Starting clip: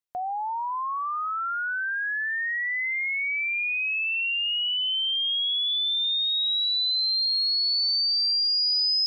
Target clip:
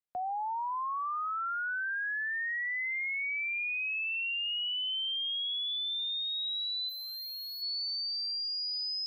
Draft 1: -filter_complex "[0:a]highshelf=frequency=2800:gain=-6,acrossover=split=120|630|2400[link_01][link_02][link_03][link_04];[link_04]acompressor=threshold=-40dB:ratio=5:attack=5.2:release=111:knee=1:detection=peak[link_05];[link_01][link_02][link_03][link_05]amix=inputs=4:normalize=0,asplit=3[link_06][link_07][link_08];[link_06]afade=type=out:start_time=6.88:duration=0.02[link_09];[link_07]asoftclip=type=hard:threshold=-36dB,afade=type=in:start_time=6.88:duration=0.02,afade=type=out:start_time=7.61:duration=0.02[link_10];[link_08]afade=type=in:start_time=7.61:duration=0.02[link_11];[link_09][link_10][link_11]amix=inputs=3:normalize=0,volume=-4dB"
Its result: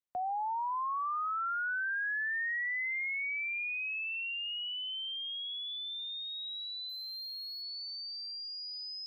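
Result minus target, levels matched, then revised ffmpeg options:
downward compressor: peak gain reduction +8 dB
-filter_complex "[0:a]highshelf=frequency=2800:gain=-6,acrossover=split=120|630|2400[link_01][link_02][link_03][link_04];[link_04]acompressor=threshold=-30dB:ratio=5:attack=5.2:release=111:knee=1:detection=peak[link_05];[link_01][link_02][link_03][link_05]amix=inputs=4:normalize=0,asplit=3[link_06][link_07][link_08];[link_06]afade=type=out:start_time=6.88:duration=0.02[link_09];[link_07]asoftclip=type=hard:threshold=-36dB,afade=type=in:start_time=6.88:duration=0.02,afade=type=out:start_time=7.61:duration=0.02[link_10];[link_08]afade=type=in:start_time=7.61:duration=0.02[link_11];[link_09][link_10][link_11]amix=inputs=3:normalize=0,volume=-4dB"

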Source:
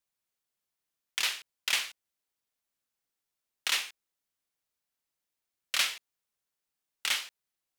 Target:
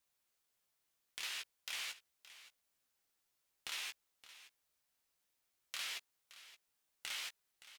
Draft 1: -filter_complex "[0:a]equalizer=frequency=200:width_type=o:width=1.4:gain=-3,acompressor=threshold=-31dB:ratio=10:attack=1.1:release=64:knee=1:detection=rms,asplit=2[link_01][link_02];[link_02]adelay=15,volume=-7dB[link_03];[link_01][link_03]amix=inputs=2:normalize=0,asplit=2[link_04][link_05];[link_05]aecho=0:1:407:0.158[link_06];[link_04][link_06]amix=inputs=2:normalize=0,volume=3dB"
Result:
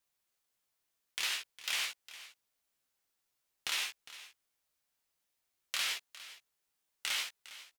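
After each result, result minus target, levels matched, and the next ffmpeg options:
downward compressor: peak gain reduction −8.5 dB; echo 163 ms early
-filter_complex "[0:a]equalizer=frequency=200:width_type=o:width=1.4:gain=-3,acompressor=threshold=-40.5dB:ratio=10:attack=1.1:release=64:knee=1:detection=rms,asplit=2[link_01][link_02];[link_02]adelay=15,volume=-7dB[link_03];[link_01][link_03]amix=inputs=2:normalize=0,asplit=2[link_04][link_05];[link_05]aecho=0:1:407:0.158[link_06];[link_04][link_06]amix=inputs=2:normalize=0,volume=3dB"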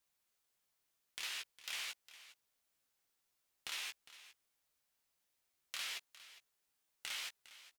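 echo 163 ms early
-filter_complex "[0:a]equalizer=frequency=200:width_type=o:width=1.4:gain=-3,acompressor=threshold=-40.5dB:ratio=10:attack=1.1:release=64:knee=1:detection=rms,asplit=2[link_01][link_02];[link_02]adelay=15,volume=-7dB[link_03];[link_01][link_03]amix=inputs=2:normalize=0,asplit=2[link_04][link_05];[link_05]aecho=0:1:570:0.158[link_06];[link_04][link_06]amix=inputs=2:normalize=0,volume=3dB"

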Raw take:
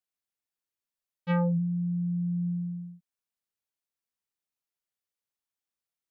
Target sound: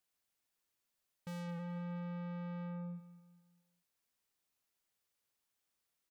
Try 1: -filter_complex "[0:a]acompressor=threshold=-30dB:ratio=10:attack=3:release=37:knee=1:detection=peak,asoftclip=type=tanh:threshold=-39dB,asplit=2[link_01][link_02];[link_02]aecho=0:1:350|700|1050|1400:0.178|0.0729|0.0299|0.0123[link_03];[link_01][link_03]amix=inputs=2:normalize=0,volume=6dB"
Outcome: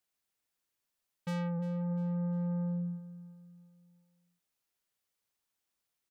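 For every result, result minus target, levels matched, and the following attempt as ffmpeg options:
echo 143 ms late; soft clipping: distortion −4 dB
-filter_complex "[0:a]acompressor=threshold=-30dB:ratio=10:attack=3:release=37:knee=1:detection=peak,asoftclip=type=tanh:threshold=-39dB,asplit=2[link_01][link_02];[link_02]aecho=0:1:207|414|621|828:0.178|0.0729|0.0299|0.0123[link_03];[link_01][link_03]amix=inputs=2:normalize=0,volume=6dB"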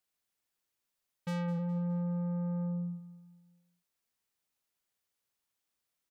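soft clipping: distortion −4 dB
-filter_complex "[0:a]acompressor=threshold=-30dB:ratio=10:attack=3:release=37:knee=1:detection=peak,asoftclip=type=tanh:threshold=-48.5dB,asplit=2[link_01][link_02];[link_02]aecho=0:1:207|414|621|828:0.178|0.0729|0.0299|0.0123[link_03];[link_01][link_03]amix=inputs=2:normalize=0,volume=6dB"

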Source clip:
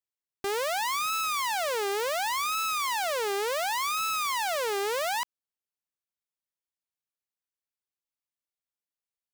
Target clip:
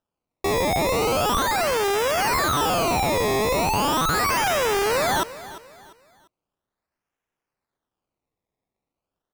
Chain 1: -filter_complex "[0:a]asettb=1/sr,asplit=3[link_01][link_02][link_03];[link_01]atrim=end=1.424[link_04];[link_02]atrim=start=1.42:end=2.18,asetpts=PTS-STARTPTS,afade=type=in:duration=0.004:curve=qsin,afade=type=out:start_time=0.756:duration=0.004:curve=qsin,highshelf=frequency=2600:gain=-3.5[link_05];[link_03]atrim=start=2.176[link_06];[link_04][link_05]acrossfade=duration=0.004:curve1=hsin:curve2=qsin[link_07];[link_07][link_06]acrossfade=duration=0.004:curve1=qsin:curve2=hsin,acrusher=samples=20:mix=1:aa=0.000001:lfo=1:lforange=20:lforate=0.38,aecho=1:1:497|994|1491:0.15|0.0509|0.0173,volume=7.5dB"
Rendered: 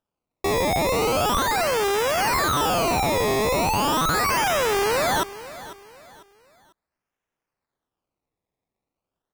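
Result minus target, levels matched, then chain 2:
echo 150 ms late
-filter_complex "[0:a]asettb=1/sr,asplit=3[link_01][link_02][link_03];[link_01]atrim=end=1.424[link_04];[link_02]atrim=start=1.42:end=2.18,asetpts=PTS-STARTPTS,afade=type=in:duration=0.004:curve=qsin,afade=type=out:start_time=0.756:duration=0.004:curve=qsin,highshelf=frequency=2600:gain=-3.5[link_05];[link_03]atrim=start=2.176[link_06];[link_04][link_05]acrossfade=duration=0.004:curve1=hsin:curve2=qsin[link_07];[link_07][link_06]acrossfade=duration=0.004:curve1=qsin:curve2=hsin,acrusher=samples=20:mix=1:aa=0.000001:lfo=1:lforange=20:lforate=0.38,aecho=1:1:347|694|1041:0.15|0.0509|0.0173,volume=7.5dB"

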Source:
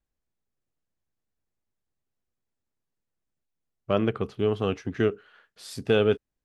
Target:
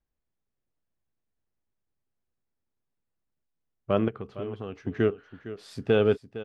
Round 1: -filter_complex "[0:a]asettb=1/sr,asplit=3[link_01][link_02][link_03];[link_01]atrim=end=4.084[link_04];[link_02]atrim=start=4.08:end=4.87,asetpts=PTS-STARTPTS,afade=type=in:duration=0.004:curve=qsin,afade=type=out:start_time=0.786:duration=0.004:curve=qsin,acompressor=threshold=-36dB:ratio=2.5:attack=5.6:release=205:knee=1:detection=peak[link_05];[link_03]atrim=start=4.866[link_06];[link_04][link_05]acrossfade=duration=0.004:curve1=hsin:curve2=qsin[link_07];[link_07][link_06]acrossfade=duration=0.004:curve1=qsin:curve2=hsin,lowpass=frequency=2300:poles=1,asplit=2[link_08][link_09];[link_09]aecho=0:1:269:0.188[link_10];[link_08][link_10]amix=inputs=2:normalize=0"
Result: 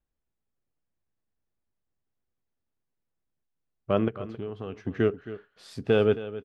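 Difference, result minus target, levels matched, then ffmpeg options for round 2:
echo 190 ms early
-filter_complex "[0:a]asettb=1/sr,asplit=3[link_01][link_02][link_03];[link_01]atrim=end=4.084[link_04];[link_02]atrim=start=4.08:end=4.87,asetpts=PTS-STARTPTS,afade=type=in:duration=0.004:curve=qsin,afade=type=out:start_time=0.786:duration=0.004:curve=qsin,acompressor=threshold=-36dB:ratio=2.5:attack=5.6:release=205:knee=1:detection=peak[link_05];[link_03]atrim=start=4.866[link_06];[link_04][link_05]acrossfade=duration=0.004:curve1=hsin:curve2=qsin[link_07];[link_07][link_06]acrossfade=duration=0.004:curve1=qsin:curve2=hsin,lowpass=frequency=2300:poles=1,asplit=2[link_08][link_09];[link_09]aecho=0:1:459:0.188[link_10];[link_08][link_10]amix=inputs=2:normalize=0"

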